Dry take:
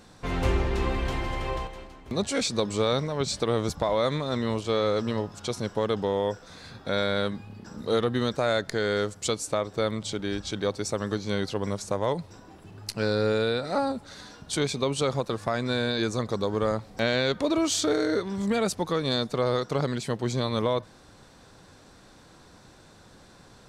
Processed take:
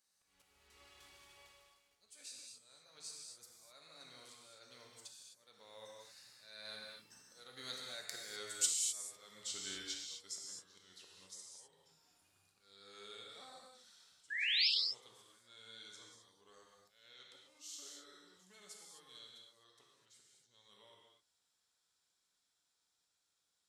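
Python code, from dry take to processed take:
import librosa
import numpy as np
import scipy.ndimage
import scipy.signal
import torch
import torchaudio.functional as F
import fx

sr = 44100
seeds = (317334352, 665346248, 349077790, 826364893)

y = fx.doppler_pass(x, sr, speed_mps=25, closest_m=23.0, pass_at_s=8.68)
y = fx.auto_swell(y, sr, attack_ms=430.0)
y = fx.spec_paint(y, sr, seeds[0], shape='rise', start_s=14.3, length_s=0.38, low_hz=1600.0, high_hz=5500.0, level_db=-29.0)
y = librosa.effects.preemphasis(y, coef=0.97, zi=[0.0])
y = fx.rev_gated(y, sr, seeds[1], gate_ms=280, shape='flat', drr_db=-2.0)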